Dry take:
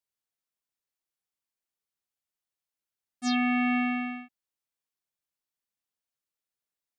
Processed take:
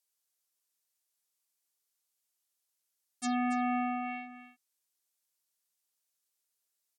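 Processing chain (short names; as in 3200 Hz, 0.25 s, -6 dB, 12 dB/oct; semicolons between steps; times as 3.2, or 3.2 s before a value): treble ducked by the level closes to 1200 Hz, closed at -26.5 dBFS; tone controls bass -10 dB, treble +11 dB; on a send: echo 0.282 s -12 dB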